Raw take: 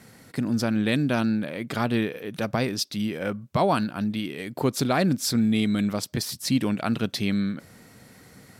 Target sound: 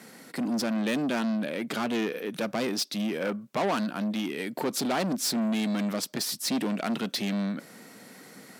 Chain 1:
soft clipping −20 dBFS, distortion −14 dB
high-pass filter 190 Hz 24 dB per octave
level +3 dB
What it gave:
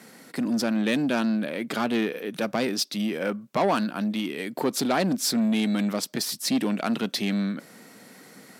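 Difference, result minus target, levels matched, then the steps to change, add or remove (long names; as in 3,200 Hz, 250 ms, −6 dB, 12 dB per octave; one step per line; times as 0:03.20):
soft clipping: distortion −6 dB
change: soft clipping −26.5 dBFS, distortion −8 dB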